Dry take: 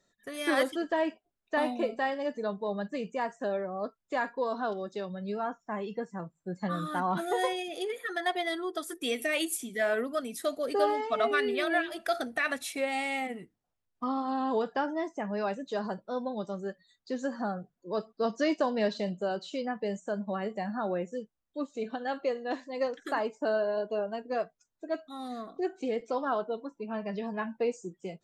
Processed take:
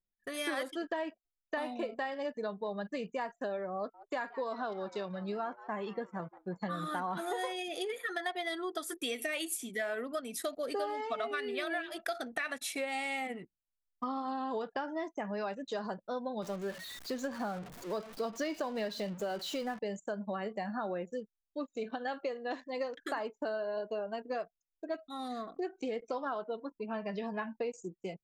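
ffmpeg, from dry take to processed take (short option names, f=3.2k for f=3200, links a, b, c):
-filter_complex "[0:a]asettb=1/sr,asplit=3[a][b][c];[a]atrim=end=3.764[d];[b]atrim=start=3.76:end=7.52,asetpts=PTS-STARTPTS,afade=t=in:d=0.004:c=qsin,afade=t=out:st=3.756:d=0.004:c=qsin,asplit=6[e][f][g][h][i][j];[f]adelay=176,afreqshift=150,volume=-20.5dB[k];[g]adelay=352,afreqshift=300,volume=-25.2dB[l];[h]adelay=528,afreqshift=450,volume=-30dB[m];[i]adelay=704,afreqshift=600,volume=-34.7dB[n];[j]adelay=880,afreqshift=750,volume=-39.4dB[o];[e][k][l][m][n][o]amix=inputs=6:normalize=0,atrim=end_sample=165816[p];[c]atrim=start=7.516[q];[d][p]acrossfade=d=0.004:c1=hsin:c2=qsin[r];[r][q]acrossfade=d=0.004:c1=qsin:c2=hsin,asettb=1/sr,asplit=3[s][t][u];[s]atrim=end=16.424[v];[t]atrim=start=16.42:end=19.79,asetpts=PTS-STARTPTS,afade=t=in:d=0.004:c=qsin,afade=t=out:st=3.366:d=0.004:c=qsin,aeval=exprs='val(0)+0.5*0.00794*sgn(val(0))':c=same[w];[u]atrim=start=19.786[x];[v][w]acrossfade=d=0.004:c1=hsin:c2=qsin[y];[y][x]acrossfade=d=0.004:c1=qsin:c2=hsin,lowshelf=f=500:g=-4.5,acompressor=threshold=-35dB:ratio=5,anlmdn=0.000631,volume=2dB"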